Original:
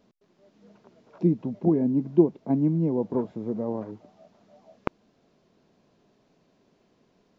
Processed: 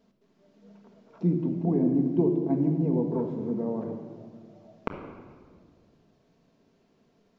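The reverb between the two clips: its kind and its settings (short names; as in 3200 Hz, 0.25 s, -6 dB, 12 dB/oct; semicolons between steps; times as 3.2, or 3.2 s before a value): shoebox room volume 2300 m³, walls mixed, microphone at 1.6 m; gain -4 dB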